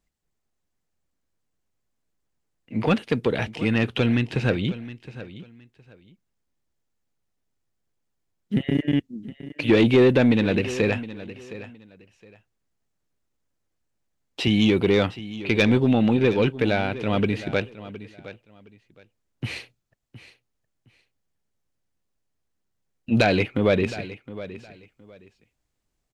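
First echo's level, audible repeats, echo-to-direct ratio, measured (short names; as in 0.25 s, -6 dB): -15.5 dB, 2, -15.5 dB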